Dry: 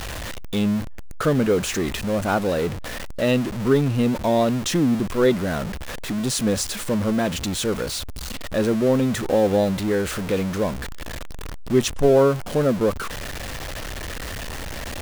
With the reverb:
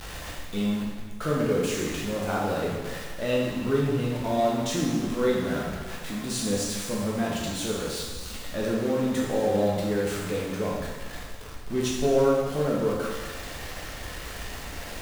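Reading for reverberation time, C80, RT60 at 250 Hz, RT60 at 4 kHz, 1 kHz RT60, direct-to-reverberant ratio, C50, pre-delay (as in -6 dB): 1.5 s, 2.5 dB, 1.3 s, 1.5 s, 1.5 s, -4.5 dB, 0.0 dB, 8 ms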